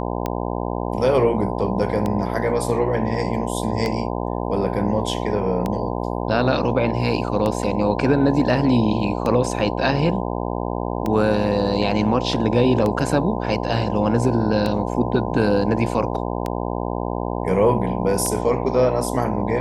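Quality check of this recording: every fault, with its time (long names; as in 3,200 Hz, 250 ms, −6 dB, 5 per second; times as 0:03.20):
mains buzz 60 Hz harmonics 17 −25 dBFS
scratch tick 33 1/3 rpm −11 dBFS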